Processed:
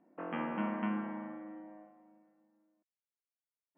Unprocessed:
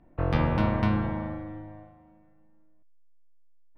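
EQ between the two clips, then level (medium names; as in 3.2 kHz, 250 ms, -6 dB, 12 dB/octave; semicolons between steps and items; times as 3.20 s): dynamic bell 480 Hz, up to -7 dB, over -42 dBFS, Q 1; brick-wall FIR band-pass 180–3300 Hz; distance through air 340 m; -4.5 dB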